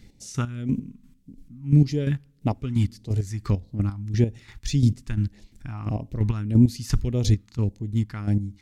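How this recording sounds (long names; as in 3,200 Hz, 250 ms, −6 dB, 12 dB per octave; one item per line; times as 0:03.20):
chopped level 2.9 Hz, depth 65%, duty 30%
phaser sweep stages 2, 1.7 Hz, lowest notch 520–1,300 Hz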